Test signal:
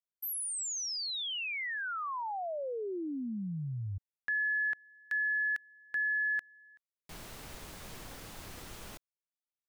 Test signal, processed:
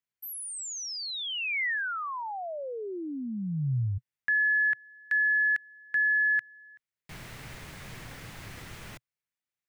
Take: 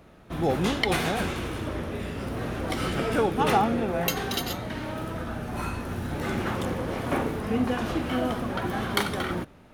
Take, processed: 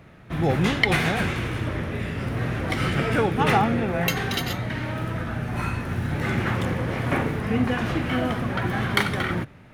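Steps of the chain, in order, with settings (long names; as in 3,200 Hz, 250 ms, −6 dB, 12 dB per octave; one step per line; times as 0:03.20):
graphic EQ with 10 bands 125 Hz +10 dB, 2,000 Hz +8 dB, 16,000 Hz −3 dB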